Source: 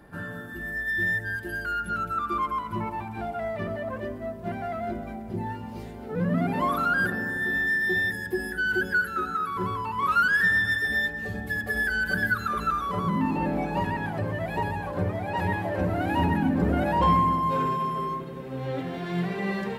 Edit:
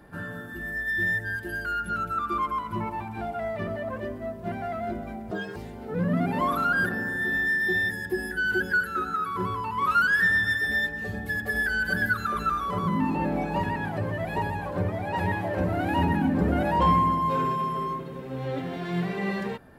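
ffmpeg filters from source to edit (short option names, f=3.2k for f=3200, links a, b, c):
-filter_complex "[0:a]asplit=3[a][b][c];[a]atrim=end=5.314[d];[b]atrim=start=5.31:end=5.77,asetpts=PTS-STARTPTS,asetrate=80703,aresample=44100,atrim=end_sample=11085,asetpts=PTS-STARTPTS[e];[c]atrim=start=5.766[f];[d][e]acrossfade=d=0.004:c1=hsin:c2=hsin[g];[g][f]acrossfade=d=0.004:c1=hsin:c2=hsin"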